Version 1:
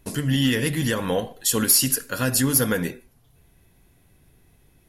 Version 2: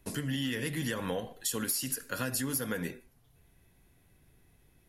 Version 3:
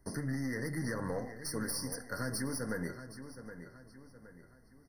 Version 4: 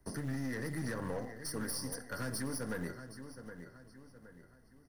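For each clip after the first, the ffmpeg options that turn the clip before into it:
-filter_complex "[0:a]equalizer=f=1.9k:w=1.5:g=2,acrossover=split=150|4500[a][b][c];[a]alimiter=level_in=6.5dB:limit=-24dB:level=0:latency=1,volume=-6.5dB[d];[d][b][c]amix=inputs=3:normalize=0,acompressor=threshold=-23dB:ratio=6,volume=-6.5dB"
-filter_complex "[0:a]aeval=exprs='(tanh(25.1*val(0)+0.4)-tanh(0.4))/25.1':c=same,asplit=2[a][b];[b]adelay=769,lowpass=f=4.8k:p=1,volume=-11dB,asplit=2[c][d];[d]adelay=769,lowpass=f=4.8k:p=1,volume=0.42,asplit=2[e][f];[f]adelay=769,lowpass=f=4.8k:p=1,volume=0.42,asplit=2[g][h];[h]adelay=769,lowpass=f=4.8k:p=1,volume=0.42[i];[a][c][e][g][i]amix=inputs=5:normalize=0,afftfilt=real='re*eq(mod(floor(b*sr/1024/2100),2),0)':imag='im*eq(mod(floor(b*sr/1024/2100),2),0)':win_size=1024:overlap=0.75"
-filter_complex "[0:a]aeval=exprs='(tanh(35.5*val(0)+0.4)-tanh(0.4))/35.5':c=same,acrossover=split=240|1400|5000[a][b][c][d];[a]acrusher=bits=5:mode=log:mix=0:aa=0.000001[e];[e][b][c][d]amix=inputs=4:normalize=0"

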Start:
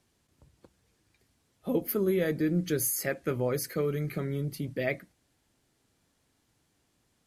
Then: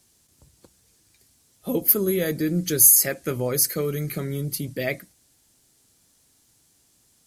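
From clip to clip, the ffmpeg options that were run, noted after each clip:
-af "bass=f=250:g=1,treble=f=4k:g=14,volume=3dB"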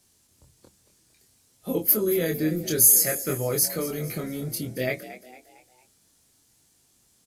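-filter_complex "[0:a]flanger=delay=22.5:depth=2.8:speed=0.58,asplit=5[a][b][c][d][e];[b]adelay=227,afreqshift=61,volume=-14.5dB[f];[c]adelay=454,afreqshift=122,volume=-21.4dB[g];[d]adelay=681,afreqshift=183,volume=-28.4dB[h];[e]adelay=908,afreqshift=244,volume=-35.3dB[i];[a][f][g][h][i]amix=inputs=5:normalize=0,volume=1.5dB"

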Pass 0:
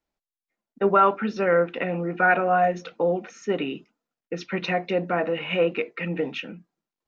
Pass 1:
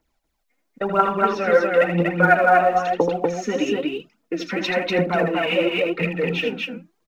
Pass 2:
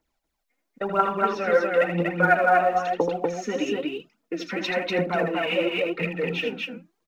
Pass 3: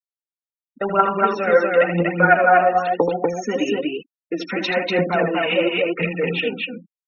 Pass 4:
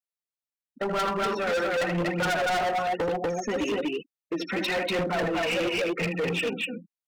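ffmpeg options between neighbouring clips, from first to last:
-filter_complex "[0:a]acompressor=threshold=-43dB:ratio=1.5,aphaser=in_gain=1:out_gain=1:delay=4.3:decay=0.69:speed=1:type=triangular,asplit=2[a][b];[b]aecho=0:1:78.72|242:0.447|0.794[c];[a][c]amix=inputs=2:normalize=0,volume=7.5dB"
-af "lowshelf=f=180:g=-3.5,volume=-3.5dB"
-af "afftfilt=real='re*gte(hypot(re,im),0.0141)':imag='im*gte(hypot(re,im),0.0141)':win_size=1024:overlap=0.75,volume=5dB"
-af "volume=21dB,asoftclip=hard,volume=-21dB,volume=-3dB"

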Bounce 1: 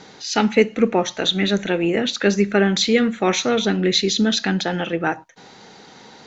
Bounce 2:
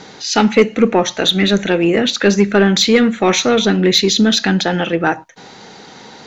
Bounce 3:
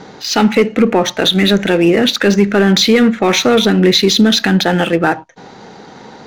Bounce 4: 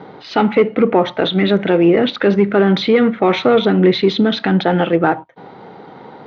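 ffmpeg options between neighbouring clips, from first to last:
-af "asoftclip=type=tanh:threshold=-7.5dB,volume=6.5dB"
-filter_complex "[0:a]lowpass=7.7k,asplit=2[a][b];[b]adynamicsmooth=sensitivity=5:basefreq=960,volume=2dB[c];[a][c]amix=inputs=2:normalize=0,alimiter=level_in=-1.5dB:limit=-1dB:release=50:level=0:latency=1,volume=-1.5dB"
-af "highpass=100,equalizer=f=220:t=q:w=4:g=-5,equalizer=f=1.7k:t=q:w=4:g=-7,equalizer=f=2.6k:t=q:w=4:g=-7,lowpass=f=3k:w=0.5412,lowpass=f=3k:w=1.3066"

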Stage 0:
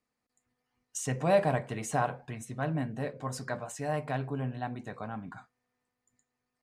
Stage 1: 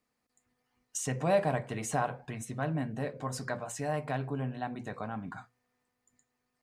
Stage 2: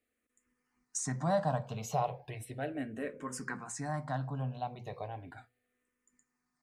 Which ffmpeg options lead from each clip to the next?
-filter_complex "[0:a]asplit=2[a][b];[b]acompressor=threshold=-39dB:ratio=6,volume=1.5dB[c];[a][c]amix=inputs=2:normalize=0,bandreject=f=60:t=h:w=6,bandreject=f=120:t=h:w=6,volume=-3.5dB"
-filter_complex "[0:a]asplit=2[a][b];[b]afreqshift=-0.36[c];[a][c]amix=inputs=2:normalize=1"

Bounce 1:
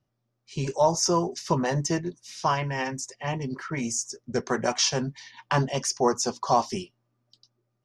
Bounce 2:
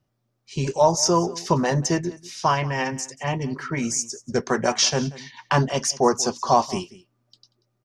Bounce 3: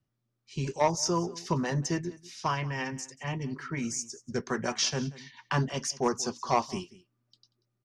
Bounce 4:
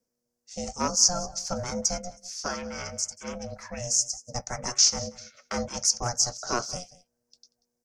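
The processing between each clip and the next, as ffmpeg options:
-af "aecho=1:1:186:0.106,volume=4dB"
-filter_complex "[0:a]highshelf=f=6.2k:g=-5,acrossover=split=520|830[a][b][c];[b]acrusher=bits=2:mix=0:aa=0.5[d];[a][d][c]amix=inputs=3:normalize=0,volume=-6.5dB"
-af "highshelf=f=4.5k:t=q:w=3:g=8.5,aeval=exprs='val(0)*sin(2*PI*360*n/s)':c=same"

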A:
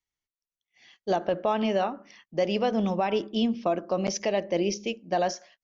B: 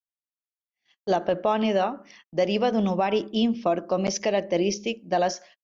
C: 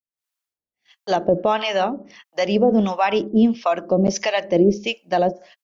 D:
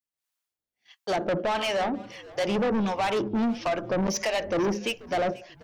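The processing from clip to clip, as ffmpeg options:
-af "agate=range=-27dB:threshold=-52dB:ratio=16:detection=peak,volume=2.5dB"
-filter_complex "[0:a]dynaudnorm=f=110:g=3:m=12dB,acrossover=split=670[a][b];[a]aeval=exprs='val(0)*(1-1/2+1/2*cos(2*PI*1.5*n/s))':c=same[c];[b]aeval=exprs='val(0)*(1-1/2-1/2*cos(2*PI*1.5*n/s))':c=same[d];[c][d]amix=inputs=2:normalize=0"
-filter_complex "[0:a]asoftclip=type=tanh:threshold=-22.5dB,asplit=3[a][b][c];[b]adelay=486,afreqshift=-97,volume=-20dB[d];[c]adelay=972,afreqshift=-194,volume=-30.2dB[e];[a][d][e]amix=inputs=3:normalize=0"

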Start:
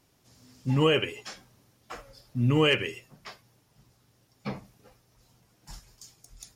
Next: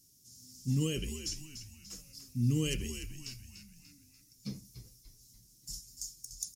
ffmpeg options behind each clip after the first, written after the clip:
-filter_complex "[0:a]firequalizer=gain_entry='entry(240,0);entry(720,-25);entry(5600,13)':delay=0.05:min_phase=1,asplit=2[a][b];[b]asplit=5[c][d][e][f][g];[c]adelay=293,afreqshift=-82,volume=-10dB[h];[d]adelay=586,afreqshift=-164,volume=-16.6dB[i];[e]adelay=879,afreqshift=-246,volume=-23.1dB[j];[f]adelay=1172,afreqshift=-328,volume=-29.7dB[k];[g]adelay=1465,afreqshift=-410,volume=-36.2dB[l];[h][i][j][k][l]amix=inputs=5:normalize=0[m];[a][m]amix=inputs=2:normalize=0,volume=-4.5dB"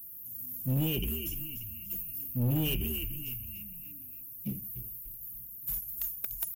-af "firequalizer=gain_entry='entry(380,0);entry(1000,-30);entry(2800,3);entry(4300,-27);entry(12000,7)':delay=0.05:min_phase=1,aexciter=amount=2.5:drive=9.5:freq=12k,asoftclip=type=tanh:threshold=-29.5dB,volume=5.5dB"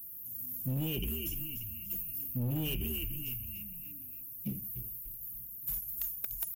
-af "acompressor=threshold=-31dB:ratio=6"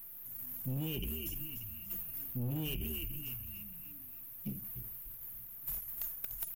-af "aeval=exprs='if(lt(val(0),0),0.708*val(0),val(0))':c=same,volume=-2dB"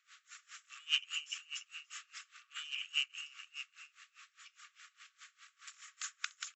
-af "afftfilt=real='re*between(b*sr/4096,1100,7800)':imag='im*between(b*sr/4096,1100,7800)':win_size=4096:overlap=0.75,aeval=exprs='val(0)*pow(10,-24*(0.5-0.5*cos(2*PI*4.9*n/s))/20)':c=same,volume=17.5dB"

